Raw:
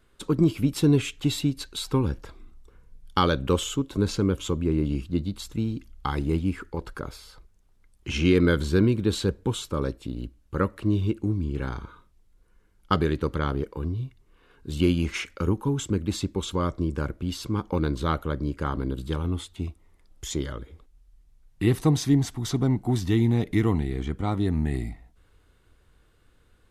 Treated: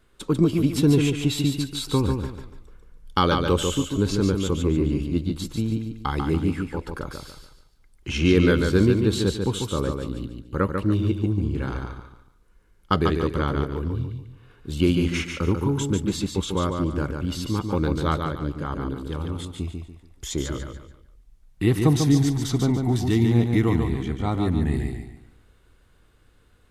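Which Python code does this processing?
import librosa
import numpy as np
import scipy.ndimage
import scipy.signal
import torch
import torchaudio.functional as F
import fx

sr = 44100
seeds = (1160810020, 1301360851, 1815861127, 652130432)

p1 = fx.level_steps(x, sr, step_db=10, at=(18.18, 19.48))
p2 = p1 + fx.echo_feedback(p1, sr, ms=144, feedback_pct=33, wet_db=-5.0, dry=0)
y = p2 * 10.0 ** (1.5 / 20.0)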